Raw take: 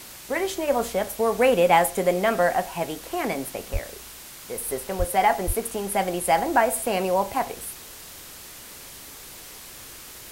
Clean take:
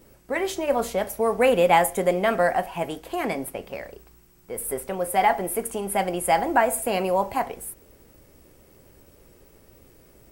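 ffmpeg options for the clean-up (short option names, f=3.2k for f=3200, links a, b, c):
-filter_complex "[0:a]asplit=3[a][b][c];[a]afade=t=out:st=3.72:d=0.02[d];[b]highpass=f=140:w=0.5412,highpass=f=140:w=1.3066,afade=t=in:st=3.72:d=0.02,afade=t=out:st=3.84:d=0.02[e];[c]afade=t=in:st=3.84:d=0.02[f];[d][e][f]amix=inputs=3:normalize=0,asplit=3[g][h][i];[g]afade=t=out:st=4.98:d=0.02[j];[h]highpass=f=140:w=0.5412,highpass=f=140:w=1.3066,afade=t=in:st=4.98:d=0.02,afade=t=out:st=5.1:d=0.02[k];[i]afade=t=in:st=5.1:d=0.02[l];[j][k][l]amix=inputs=3:normalize=0,asplit=3[m][n][o];[m]afade=t=out:st=5.46:d=0.02[p];[n]highpass=f=140:w=0.5412,highpass=f=140:w=1.3066,afade=t=in:st=5.46:d=0.02,afade=t=out:st=5.58:d=0.02[q];[o]afade=t=in:st=5.58:d=0.02[r];[p][q][r]amix=inputs=3:normalize=0,afftdn=nr=12:nf=-42"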